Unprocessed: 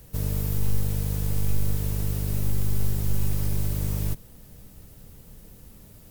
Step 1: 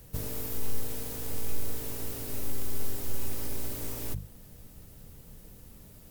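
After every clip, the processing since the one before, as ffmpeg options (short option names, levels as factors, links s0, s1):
-af "bandreject=f=50:t=h:w=6,bandreject=f=100:t=h:w=6,bandreject=f=150:t=h:w=6,bandreject=f=200:t=h:w=6,volume=0.794"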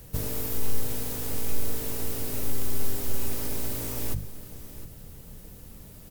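-af "aecho=1:1:712:0.178,volume=1.68"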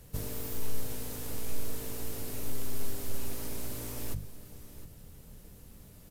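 -af "volume=0.531" -ar 32000 -c:a aac -b:a 96k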